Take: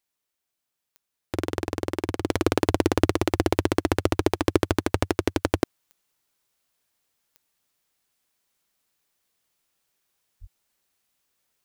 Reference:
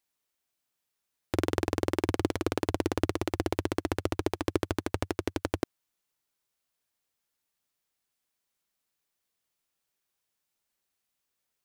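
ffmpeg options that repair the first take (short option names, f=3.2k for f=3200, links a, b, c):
-filter_complex "[0:a]adeclick=t=4,asplit=3[a][b][c];[a]afade=t=out:st=10.4:d=0.02[d];[b]highpass=f=140:w=0.5412,highpass=f=140:w=1.3066,afade=t=in:st=10.4:d=0.02,afade=t=out:st=10.52:d=0.02[e];[c]afade=t=in:st=10.52:d=0.02[f];[d][e][f]amix=inputs=3:normalize=0,asetnsamples=n=441:p=0,asendcmd='2.29 volume volume -7.5dB',volume=0dB"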